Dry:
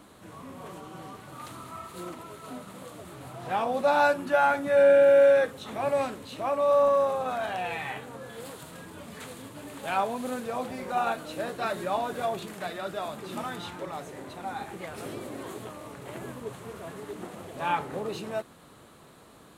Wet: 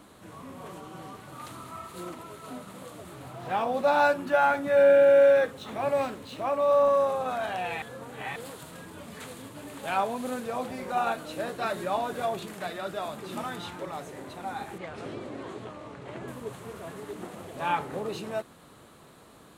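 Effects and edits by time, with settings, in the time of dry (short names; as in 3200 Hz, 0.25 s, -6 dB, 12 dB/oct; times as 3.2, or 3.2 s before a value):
3.22–6.89 decimation joined by straight lines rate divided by 2×
7.82–8.36 reverse
14.78–16.28 air absorption 96 m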